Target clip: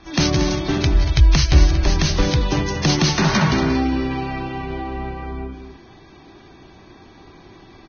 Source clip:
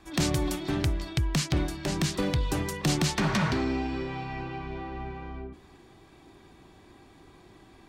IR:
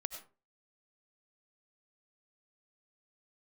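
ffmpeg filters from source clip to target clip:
-filter_complex "[0:a]aecho=1:1:183.7|233.2:0.282|0.316,asplit=3[link_01][link_02][link_03];[link_01]afade=type=out:start_time=0.93:duration=0.02[link_04];[link_02]asubboost=boost=11:cutoff=72,afade=type=in:start_time=0.93:duration=0.02,afade=type=out:start_time=2.28:duration=0.02[link_05];[link_03]afade=type=in:start_time=2.28:duration=0.02[link_06];[link_04][link_05][link_06]amix=inputs=3:normalize=0,volume=8dB" -ar 16000 -c:a libvorbis -b:a 16k

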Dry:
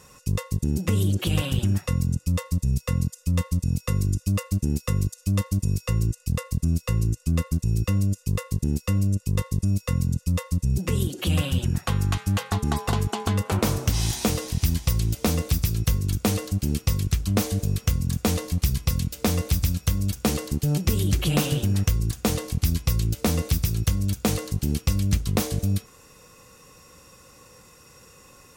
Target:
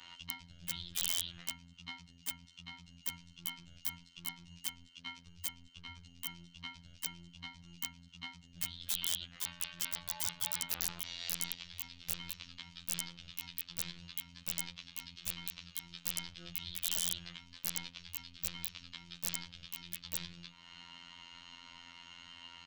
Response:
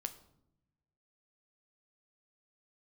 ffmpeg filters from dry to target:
-af "highpass=41,equalizer=frequency=610:width=0.58:gain=-15,bandreject=frequency=50:width_type=h:width=6,bandreject=frequency=100:width_type=h:width=6,bandreject=frequency=150:width_type=h:width=6,bandreject=frequency=200:width_type=h:width=6,bandreject=frequency=250:width_type=h:width=6,bandreject=frequency=300:width_type=h:width=6,bandreject=frequency=350:width_type=h:width=6,alimiter=limit=-23.5dB:level=0:latency=1:release=37,acompressor=threshold=-44dB:ratio=2,highpass=frequency=290:width_type=q:width=0.5412,highpass=frequency=290:width_type=q:width=1.307,lowpass=frequency=3300:width_type=q:width=0.5176,lowpass=frequency=3300:width_type=q:width=0.7071,lowpass=frequency=3300:width_type=q:width=1.932,afreqshift=-320,asetrate=55566,aresample=44100,aeval=exprs='(mod(79.4*val(0)+1,2)-1)/79.4':channel_layout=same,afftfilt=real='hypot(re,im)*cos(PI*b)':imag='0':win_size=2048:overlap=0.75,aeval=exprs='(mod(70.8*val(0)+1,2)-1)/70.8':channel_layout=same,crystalizer=i=4:c=0,volume=7.5dB"

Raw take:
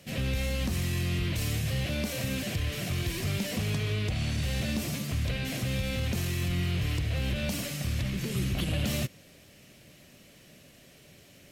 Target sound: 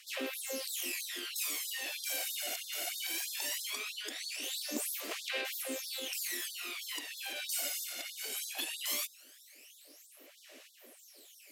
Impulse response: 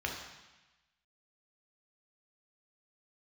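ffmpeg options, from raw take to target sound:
-af "aphaser=in_gain=1:out_gain=1:delay=1.4:decay=0.66:speed=0.19:type=sinusoidal,aemphasis=mode=production:type=cd,afftfilt=real='re*gte(b*sr/1024,230*pow(3500/230,0.5+0.5*sin(2*PI*3.1*pts/sr)))':imag='im*gte(b*sr/1024,230*pow(3500/230,0.5+0.5*sin(2*PI*3.1*pts/sr)))':win_size=1024:overlap=0.75,volume=-6dB"

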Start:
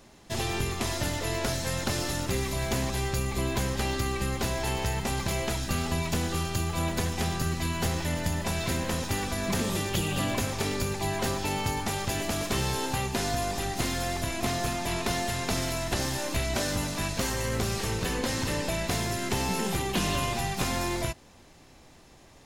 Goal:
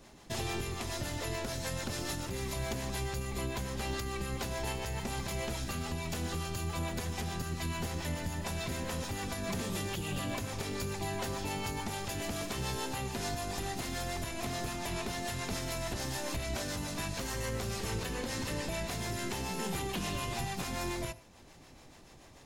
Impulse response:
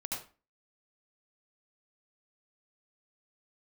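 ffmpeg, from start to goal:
-filter_complex "[0:a]acrossover=split=470[link_01][link_02];[link_01]aeval=exprs='val(0)*(1-0.5/2+0.5/2*cos(2*PI*6.9*n/s))':channel_layout=same[link_03];[link_02]aeval=exprs='val(0)*(1-0.5/2-0.5/2*cos(2*PI*6.9*n/s))':channel_layout=same[link_04];[link_03][link_04]amix=inputs=2:normalize=0,alimiter=level_in=2.5dB:limit=-24dB:level=0:latency=1:release=425,volume=-2.5dB,asplit=2[link_05][link_06];[1:a]atrim=start_sample=2205,asetrate=42777,aresample=44100[link_07];[link_06][link_07]afir=irnorm=-1:irlink=0,volume=-16.5dB[link_08];[link_05][link_08]amix=inputs=2:normalize=0"

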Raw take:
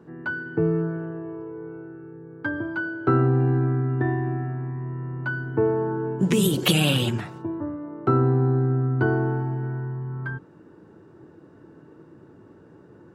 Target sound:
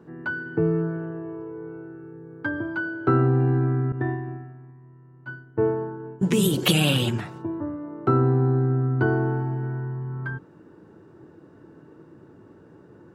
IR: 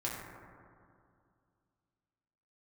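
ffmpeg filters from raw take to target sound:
-filter_complex "[0:a]asettb=1/sr,asplit=3[link_01][link_02][link_03];[link_01]atrim=end=3.924[link_04];[link_02]atrim=start=3.92:end=6.5,asetpts=PTS-STARTPTS,afade=type=in:duration=0.004:curve=qsin,afade=type=out:start_time=2.576:duration=0.004:curve=qsin,agate=range=-33dB:threshold=-19dB:ratio=3:detection=peak[link_05];[link_03]atrim=start=6.496[link_06];[link_04][link_05]acrossfade=duration=0.004:curve1=hsin:curve2=qsin[link_07];[link_07][link_06]acrossfade=duration=0.004:curve1=qsin:curve2=hsin"

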